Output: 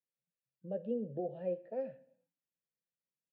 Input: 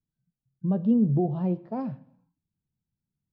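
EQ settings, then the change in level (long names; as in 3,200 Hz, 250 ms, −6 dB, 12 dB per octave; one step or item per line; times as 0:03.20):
formant filter e
high-pass filter 120 Hz
parametric band 340 Hz −4 dB 0.8 octaves
+5.0 dB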